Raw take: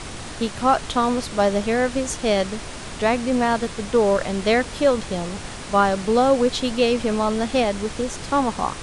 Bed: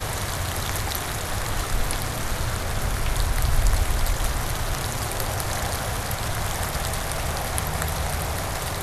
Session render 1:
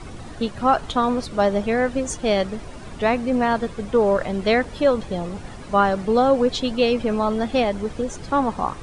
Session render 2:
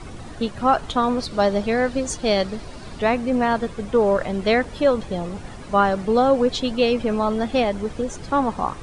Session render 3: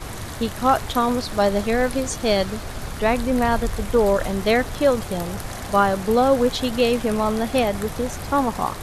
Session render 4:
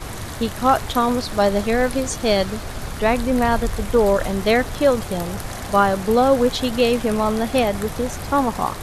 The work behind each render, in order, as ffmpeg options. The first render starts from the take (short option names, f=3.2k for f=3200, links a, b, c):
-af "afftdn=nr=12:nf=-34"
-filter_complex "[0:a]asettb=1/sr,asplit=3[a][b][c];[a]atrim=end=1.194[d];[b]atrim=start=1.19:end=3,asetpts=PTS-STARTPTS,afade=t=in:d=0.004:c=qsin,afade=t=out:st=1.806:d=0.004:c=qsin,equalizer=f=4.4k:t=o:w=0.47:g=7[e];[c]atrim=start=2.996[f];[d][e]acrossfade=d=0.004:c1=hsin:c2=qsin[g];[g][f]acrossfade=d=0.004:c1=qsin:c2=hsin"
-filter_complex "[1:a]volume=-7dB[a];[0:a][a]amix=inputs=2:normalize=0"
-af "volume=1.5dB"